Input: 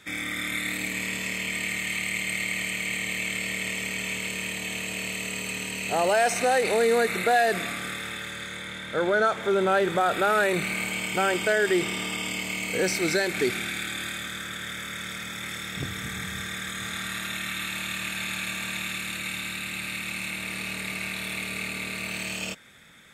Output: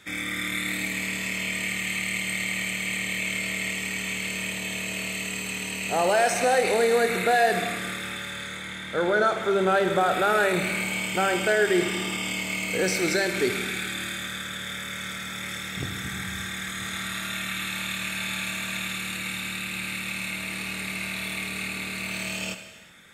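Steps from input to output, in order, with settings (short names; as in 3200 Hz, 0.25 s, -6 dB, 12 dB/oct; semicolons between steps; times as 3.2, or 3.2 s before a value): non-linear reverb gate 0.45 s falling, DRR 7 dB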